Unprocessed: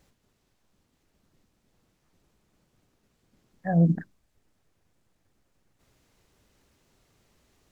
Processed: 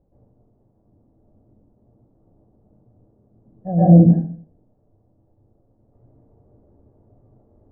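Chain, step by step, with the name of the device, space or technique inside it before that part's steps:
next room (low-pass filter 700 Hz 24 dB per octave; convolution reverb RT60 0.55 s, pre-delay 118 ms, DRR −11 dB)
level +2.5 dB

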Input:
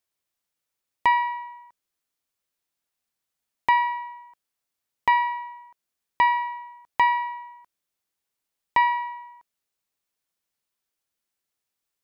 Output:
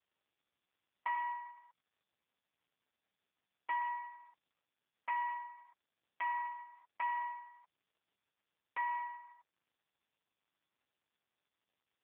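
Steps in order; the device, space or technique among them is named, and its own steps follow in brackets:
0:07.39–0:08.87: dynamic equaliser 190 Hz, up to −3 dB, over −42 dBFS, Q 0.84
voicemail (band-pass filter 440–3,100 Hz; downward compressor 8 to 1, threshold −22 dBFS, peak gain reduction 7.5 dB; level −7.5 dB; AMR narrowband 5.15 kbit/s 8,000 Hz)

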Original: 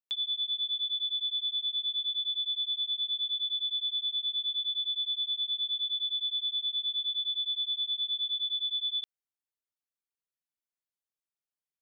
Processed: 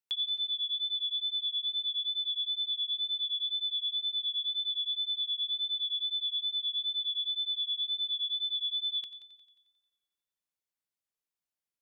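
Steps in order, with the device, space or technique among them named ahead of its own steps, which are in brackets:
multi-head tape echo (echo machine with several playback heads 89 ms, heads first and second, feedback 47%, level −16 dB; tape wow and flutter 19 cents)

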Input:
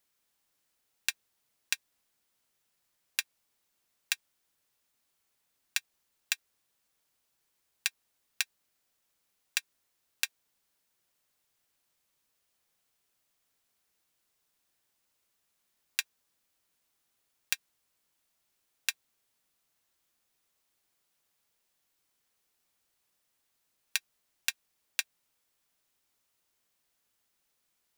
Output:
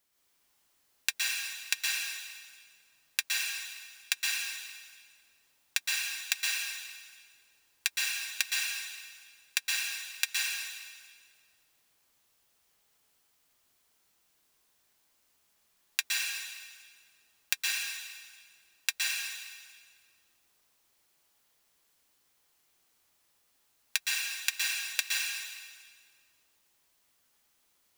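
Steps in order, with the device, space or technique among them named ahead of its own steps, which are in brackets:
stairwell (convolution reverb RT60 1.6 s, pre-delay 111 ms, DRR −4.5 dB)
level +1 dB

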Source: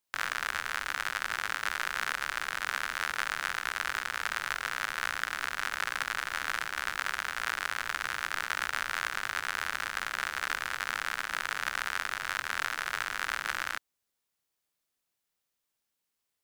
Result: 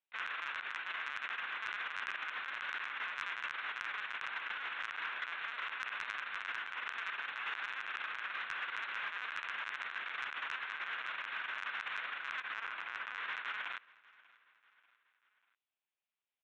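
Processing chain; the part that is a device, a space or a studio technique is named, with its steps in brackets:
0:12.54–0:13.15: high-shelf EQ 4,100 Hz −11 dB
talking toy (linear-prediction vocoder at 8 kHz pitch kept; high-pass filter 440 Hz 12 dB per octave; parametric band 2,500 Hz +5 dB 0.38 octaves; soft clipping −17.5 dBFS, distortion −21 dB)
repeating echo 590 ms, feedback 50%, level −23.5 dB
level −7 dB

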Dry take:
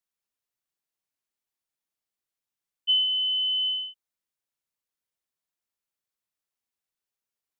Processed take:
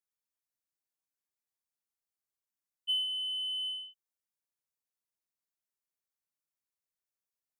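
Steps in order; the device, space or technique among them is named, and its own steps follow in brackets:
exciter from parts (in parallel at −6 dB: high-pass filter 2,900 Hz 24 dB per octave + soft clipping −31.5 dBFS, distortion −10 dB)
on the sum: level −7.5 dB

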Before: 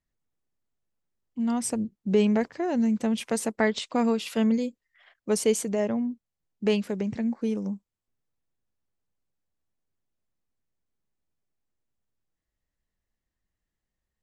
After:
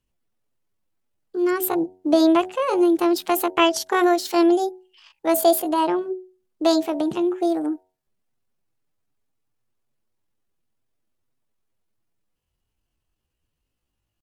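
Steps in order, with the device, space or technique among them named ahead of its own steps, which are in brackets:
mains-hum notches 60/120/180/240/300/360/420/480/540/600 Hz
chipmunk voice (pitch shifter +7.5 semitones)
level +6.5 dB

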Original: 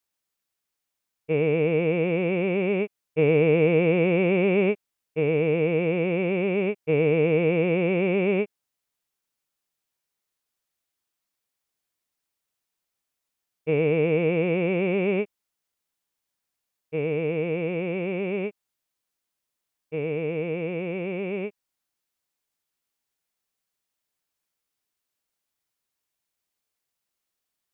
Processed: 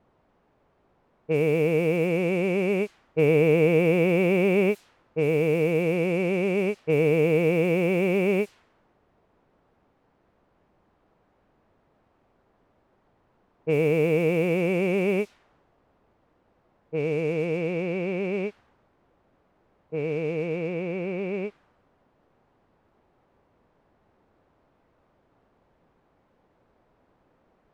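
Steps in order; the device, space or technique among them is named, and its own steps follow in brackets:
cassette deck with a dynamic noise filter (white noise bed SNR 25 dB; low-pass that shuts in the quiet parts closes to 680 Hz, open at −19 dBFS)

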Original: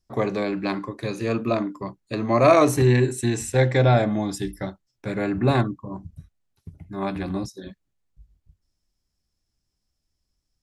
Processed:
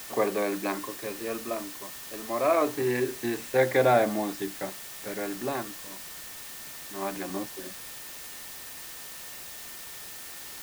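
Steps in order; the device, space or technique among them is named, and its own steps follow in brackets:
shortwave radio (band-pass filter 320–2,700 Hz; amplitude tremolo 0.25 Hz, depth 70%; steady tone 1,800 Hz −54 dBFS; white noise bed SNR 11 dB)

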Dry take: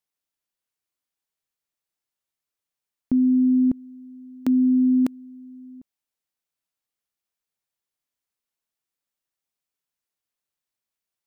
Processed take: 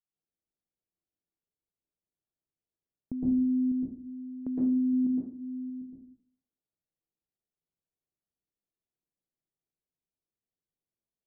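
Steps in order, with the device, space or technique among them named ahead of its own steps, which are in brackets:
0:04.93–0:05.70: low-shelf EQ 300 Hz +6 dB
television next door (downward compressor 3 to 1, threshold −31 dBFS, peak gain reduction 12.5 dB; low-pass filter 430 Hz 12 dB per octave; convolution reverb RT60 0.50 s, pre-delay 109 ms, DRR −7 dB)
level −5.5 dB

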